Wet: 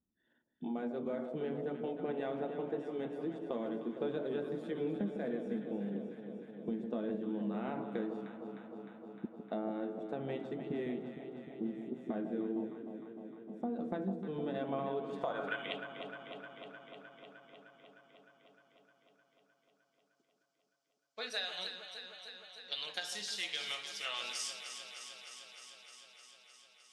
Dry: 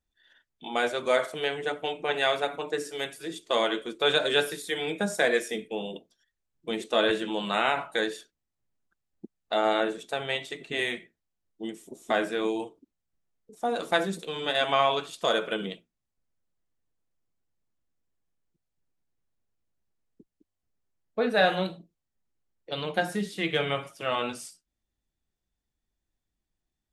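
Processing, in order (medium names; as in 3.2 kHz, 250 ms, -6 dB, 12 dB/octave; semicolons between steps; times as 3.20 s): band-pass sweep 220 Hz -> 5.3 kHz, 14.81–16.01 s; compression 6:1, threshold -45 dBFS, peak gain reduction 18 dB; echo whose repeats swap between lows and highs 153 ms, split 930 Hz, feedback 87%, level -7.5 dB; trim +9.5 dB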